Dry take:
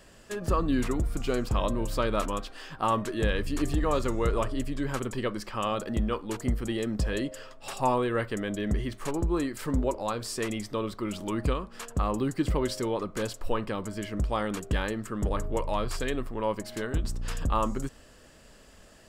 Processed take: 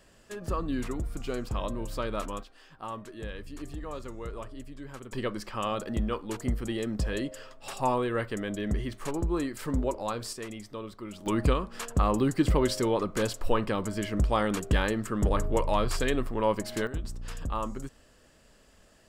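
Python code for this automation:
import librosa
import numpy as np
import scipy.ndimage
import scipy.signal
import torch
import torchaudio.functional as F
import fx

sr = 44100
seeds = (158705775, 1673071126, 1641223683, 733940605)

y = fx.gain(x, sr, db=fx.steps((0.0, -5.0), (2.43, -12.0), (5.12, -1.5), (10.33, -8.0), (11.26, 3.0), (16.87, -5.5)))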